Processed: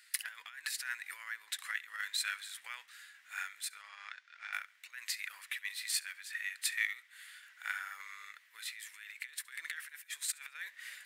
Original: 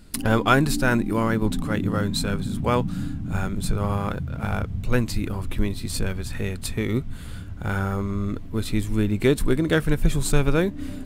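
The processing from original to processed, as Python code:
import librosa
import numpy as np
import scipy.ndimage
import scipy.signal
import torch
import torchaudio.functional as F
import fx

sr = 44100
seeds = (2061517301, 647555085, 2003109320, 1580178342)

y = fx.high_shelf(x, sr, hz=3300.0, db=5.5)
y = fx.over_compress(y, sr, threshold_db=-23.0, ratio=-0.5)
y = fx.ladder_highpass(y, sr, hz=1700.0, resonance_pct=70)
y = fx.tremolo_random(y, sr, seeds[0], hz=3.5, depth_pct=55)
y = fx.ladder_lowpass(y, sr, hz=6700.0, resonance_pct=35, at=(3.77, 4.53))
y = fx.echo_feedback(y, sr, ms=69, feedback_pct=40, wet_db=-23.5)
y = y * librosa.db_to_amplitude(2.5)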